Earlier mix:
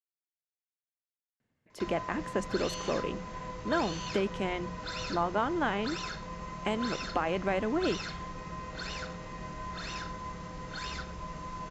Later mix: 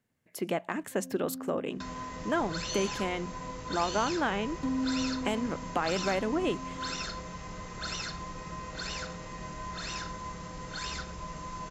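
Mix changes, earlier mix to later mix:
speech: entry −1.40 s
first sound: unmuted
master: remove high-frequency loss of the air 88 metres

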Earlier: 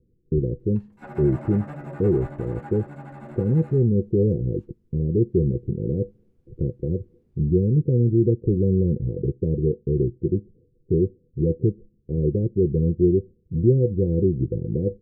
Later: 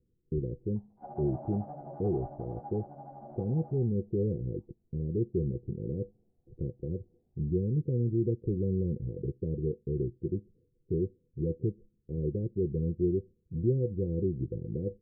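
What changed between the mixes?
speech −10.0 dB
background: add transistor ladder low-pass 790 Hz, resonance 75%

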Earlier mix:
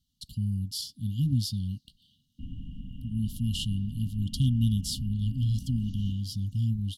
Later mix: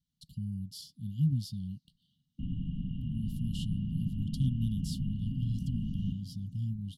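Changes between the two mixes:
speech −11.5 dB
master: add parametric band 160 Hz +12 dB 0.72 octaves

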